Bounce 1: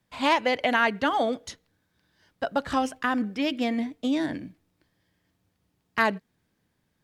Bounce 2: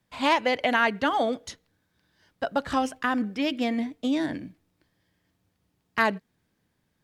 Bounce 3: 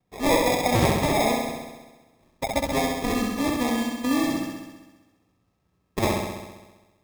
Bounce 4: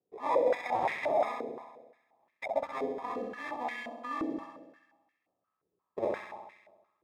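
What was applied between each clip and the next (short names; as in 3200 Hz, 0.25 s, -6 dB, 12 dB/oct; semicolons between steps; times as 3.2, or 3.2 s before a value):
nothing audible
sample-and-hold 30×; flutter echo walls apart 11.3 m, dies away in 1.2 s
stepped band-pass 5.7 Hz 420–2000 Hz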